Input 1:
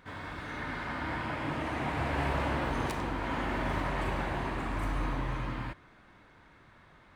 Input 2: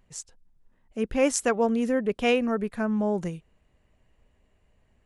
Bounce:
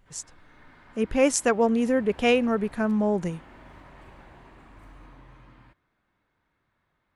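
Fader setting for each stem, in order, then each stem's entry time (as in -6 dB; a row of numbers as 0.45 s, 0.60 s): -17.0 dB, +2.0 dB; 0.00 s, 0.00 s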